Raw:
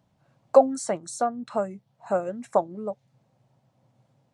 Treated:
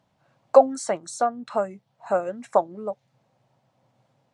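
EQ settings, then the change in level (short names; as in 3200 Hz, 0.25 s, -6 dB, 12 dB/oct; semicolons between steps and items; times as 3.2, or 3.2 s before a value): low shelf 340 Hz -9.5 dB; high shelf 8800 Hz -10.5 dB; +4.5 dB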